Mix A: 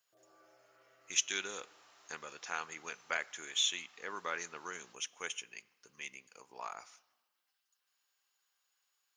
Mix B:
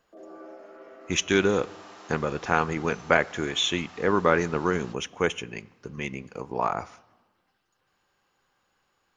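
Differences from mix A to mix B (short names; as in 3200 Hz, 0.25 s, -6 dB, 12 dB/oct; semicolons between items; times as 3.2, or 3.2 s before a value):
first sound: add steep high-pass 190 Hz 96 dB/oct; second sound: add high shelf 3000 Hz +11 dB; master: remove differentiator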